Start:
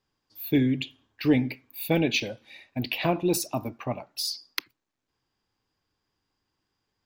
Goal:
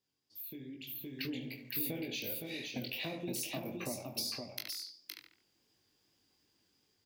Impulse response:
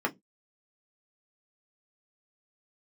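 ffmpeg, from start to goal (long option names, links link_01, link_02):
-filter_complex "[0:a]highpass=frequency=230:poles=1,equalizer=frequency=1100:width=0.82:gain=-11,asplit=2[link_01][link_02];[link_02]adelay=21,volume=-9.5dB[link_03];[link_01][link_03]amix=inputs=2:normalize=0,asplit=2[link_04][link_05];[link_05]adelay=71,lowpass=frequency=2600:poles=1,volume=-11.5dB,asplit=2[link_06][link_07];[link_07]adelay=71,lowpass=frequency=2600:poles=1,volume=0.41,asplit=2[link_08][link_09];[link_09]adelay=71,lowpass=frequency=2600:poles=1,volume=0.41,asplit=2[link_10][link_11];[link_11]adelay=71,lowpass=frequency=2600:poles=1,volume=0.41[link_12];[link_06][link_08][link_10][link_12]amix=inputs=4:normalize=0[link_13];[link_04][link_13]amix=inputs=2:normalize=0,alimiter=limit=-21.5dB:level=0:latency=1,flanger=delay=18:depth=5.7:speed=2.6,acompressor=threshold=-48dB:ratio=6,asplit=2[link_14][link_15];[link_15]aecho=0:1:516:0.596[link_16];[link_14][link_16]amix=inputs=2:normalize=0,dynaudnorm=framelen=210:gausssize=9:maxgain=10dB,highshelf=frequency=7300:gain=5,volume=-1dB"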